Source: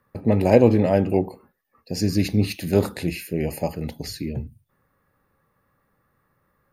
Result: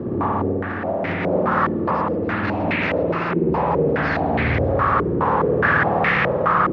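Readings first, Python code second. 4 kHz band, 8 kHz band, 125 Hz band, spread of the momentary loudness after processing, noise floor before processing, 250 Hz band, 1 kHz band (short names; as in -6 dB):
-0.5 dB, under -20 dB, +1.0 dB, 5 LU, -70 dBFS, +0.5 dB, +15.0 dB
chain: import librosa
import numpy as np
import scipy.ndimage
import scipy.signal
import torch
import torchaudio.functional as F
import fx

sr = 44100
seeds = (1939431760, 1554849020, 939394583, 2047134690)

y = fx.delta_mod(x, sr, bps=32000, step_db=-14.0)
y = scipy.signal.sosfilt(scipy.signal.butter(2, 89.0, 'highpass', fs=sr, output='sos'), y)
y = fx.over_compress(y, sr, threshold_db=-21.0, ratio=-0.5)
y = fx.dmg_crackle(y, sr, seeds[0], per_s=230.0, level_db=-31.0)
y = fx.rev_spring(y, sr, rt60_s=2.5, pass_ms=(53,), chirp_ms=70, drr_db=-3.5)
y = fx.filter_held_lowpass(y, sr, hz=4.8, low_hz=350.0, high_hz=2100.0)
y = y * 10.0 ** (-6.5 / 20.0)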